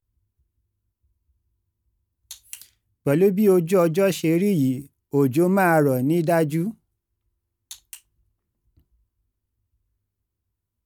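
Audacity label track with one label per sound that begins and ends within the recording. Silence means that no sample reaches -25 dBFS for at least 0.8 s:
2.310000	6.700000	sound
7.710000	7.940000	sound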